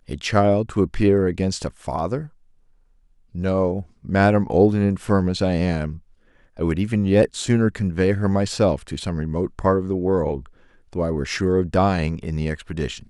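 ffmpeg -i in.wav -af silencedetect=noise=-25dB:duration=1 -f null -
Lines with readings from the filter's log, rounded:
silence_start: 2.22
silence_end: 3.35 | silence_duration: 1.14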